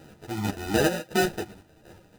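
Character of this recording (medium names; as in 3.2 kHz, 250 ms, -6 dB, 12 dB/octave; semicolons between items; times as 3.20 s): aliases and images of a low sample rate 1.1 kHz, jitter 0%; chopped level 2.7 Hz, depth 60%, duty 35%; a shimmering, thickened sound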